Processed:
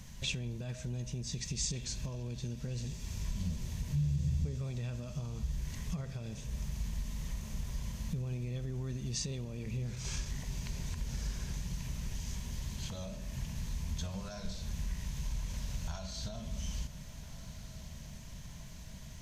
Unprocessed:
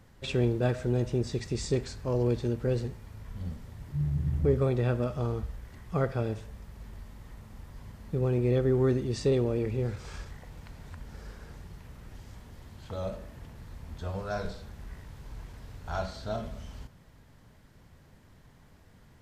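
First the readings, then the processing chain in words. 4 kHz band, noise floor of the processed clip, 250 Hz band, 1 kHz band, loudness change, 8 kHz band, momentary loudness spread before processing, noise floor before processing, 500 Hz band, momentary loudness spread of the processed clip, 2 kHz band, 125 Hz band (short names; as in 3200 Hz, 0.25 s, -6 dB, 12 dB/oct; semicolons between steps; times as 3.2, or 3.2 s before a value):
+2.5 dB, -47 dBFS, -9.0 dB, -12.5 dB, -9.0 dB, +8.0 dB, 21 LU, -57 dBFS, -19.0 dB, 13 LU, -5.0 dB, -5.5 dB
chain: thirty-one-band EQ 100 Hz -12 dB, 630 Hz +7 dB, 1000 Hz +10 dB, 2000 Hz -4 dB, 6300 Hz +10 dB; compressor 3:1, threshold -43 dBFS, peak gain reduction 17.5 dB; diffused feedback echo 1.505 s, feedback 67%, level -15 dB; limiter -34 dBFS, peak gain reduction 7.5 dB; band shelf 640 Hz -16 dB 2.7 oct; gain +10.5 dB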